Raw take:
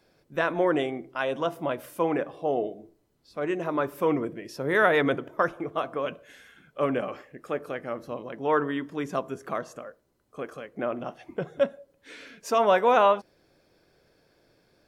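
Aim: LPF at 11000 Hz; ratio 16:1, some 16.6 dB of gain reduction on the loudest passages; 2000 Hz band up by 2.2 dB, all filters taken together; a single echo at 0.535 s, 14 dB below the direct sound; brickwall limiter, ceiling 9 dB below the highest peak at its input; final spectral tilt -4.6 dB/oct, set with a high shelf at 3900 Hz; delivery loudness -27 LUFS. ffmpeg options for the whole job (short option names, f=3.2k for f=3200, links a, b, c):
-af "lowpass=11k,equalizer=f=2k:t=o:g=4.5,highshelf=f=3.9k:g=-7.5,acompressor=threshold=-32dB:ratio=16,alimiter=level_in=3.5dB:limit=-24dB:level=0:latency=1,volume=-3.5dB,aecho=1:1:535:0.2,volume=13dB"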